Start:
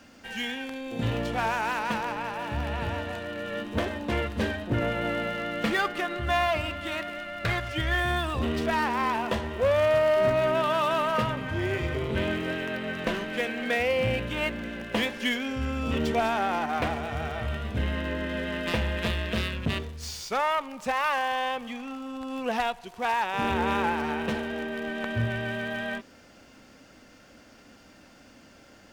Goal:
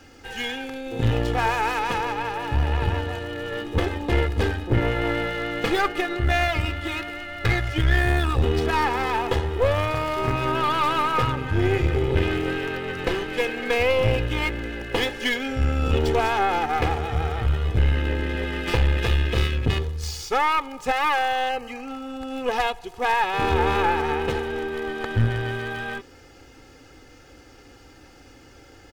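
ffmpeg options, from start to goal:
-filter_complex "[0:a]lowshelf=f=300:g=6.5,aecho=1:1:2.4:0.8,aeval=exprs='(tanh(6.31*val(0)+0.6)-tanh(0.6))/6.31':c=same,asettb=1/sr,asplit=3[a][b][c];[a]atrim=end=21.494[d];[b]atrim=start=21.49:end=21.89,asetpts=PTS-STARTPTS,afade=t=in:d=0.004:c=qsin,afade=t=out:st=0.396:d=0.004:c=qsin,asuperstop=centerf=3500:order=20:qfactor=6.4[e];[c]atrim=start=21.886[f];[d][e]acrossfade=d=0.004:c1=hsin:c2=qsin[g];[g][f]acrossfade=d=0.004:c1=qsin:c2=hsin,volume=4dB"

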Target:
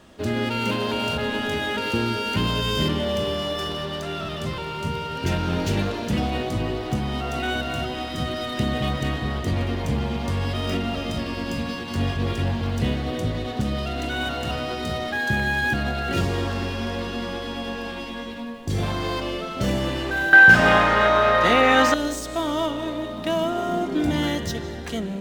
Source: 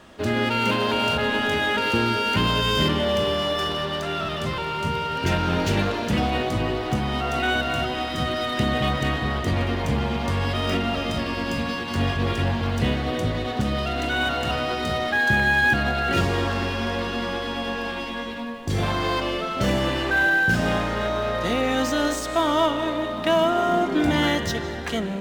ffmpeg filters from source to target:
-af "asetnsamples=n=441:p=0,asendcmd='20.33 equalizer g 11;21.94 equalizer g -7',equalizer=f=1.4k:w=0.46:g=-5"

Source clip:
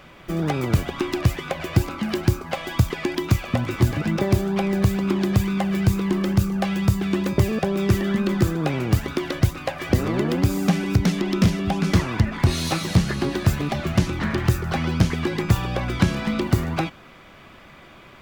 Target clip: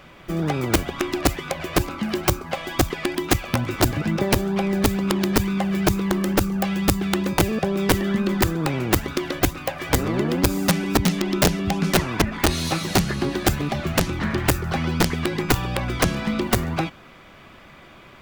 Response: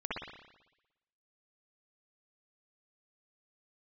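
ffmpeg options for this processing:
-af "aeval=exprs='(mod(3.16*val(0)+1,2)-1)/3.16':c=same"

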